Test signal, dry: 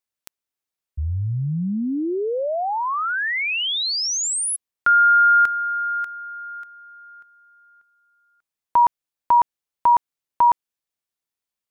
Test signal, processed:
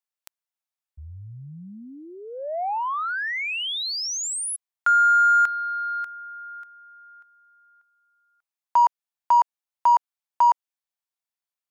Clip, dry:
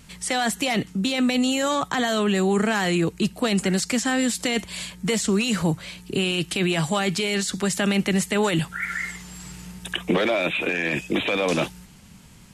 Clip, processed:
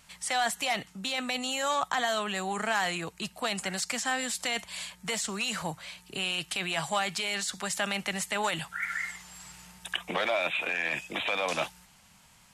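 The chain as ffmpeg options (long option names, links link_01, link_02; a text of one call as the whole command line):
ffmpeg -i in.wav -af "lowshelf=frequency=520:width_type=q:width=1.5:gain=-10,aeval=exprs='0.422*(cos(1*acos(clip(val(0)/0.422,-1,1)))-cos(1*PI/2))+0.00944*(cos(7*acos(clip(val(0)/0.422,-1,1)))-cos(7*PI/2))':channel_layout=same,volume=-4dB" out.wav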